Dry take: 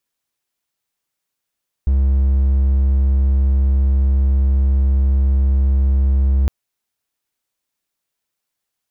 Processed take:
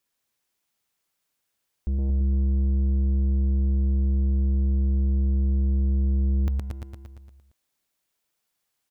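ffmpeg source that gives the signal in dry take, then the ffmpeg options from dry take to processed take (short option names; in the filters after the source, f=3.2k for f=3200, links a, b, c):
-f lavfi -i "aevalsrc='0.335*(1-4*abs(mod(67.3*t+0.25,1)-0.5))':d=4.61:s=44100"
-filter_complex "[0:a]asplit=2[a][b];[b]aecho=0:1:116|232|348|464|580|696|812:0.422|0.245|0.142|0.0823|0.0477|0.0277|0.0161[c];[a][c]amix=inputs=2:normalize=0,asoftclip=type=tanh:threshold=-23dB,asplit=2[d][e];[e]aecho=0:1:223:0.355[f];[d][f]amix=inputs=2:normalize=0"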